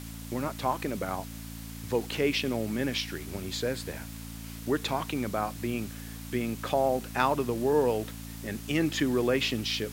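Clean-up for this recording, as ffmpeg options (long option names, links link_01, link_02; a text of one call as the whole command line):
ffmpeg -i in.wav -af "adeclick=threshold=4,bandreject=frequency=56:width_type=h:width=4,bandreject=frequency=112:width_type=h:width=4,bandreject=frequency=168:width_type=h:width=4,bandreject=frequency=224:width_type=h:width=4,bandreject=frequency=280:width_type=h:width=4,afwtdn=0.0045" out.wav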